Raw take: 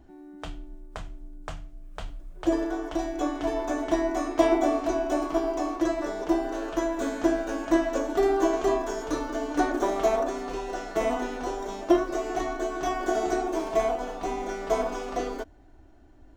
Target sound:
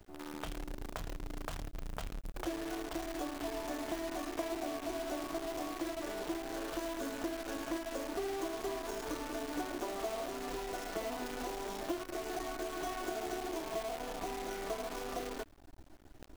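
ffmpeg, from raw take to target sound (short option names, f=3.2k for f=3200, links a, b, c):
-af "acompressor=threshold=-40dB:ratio=4,acrusher=bits=8:dc=4:mix=0:aa=0.000001,volume=1dB"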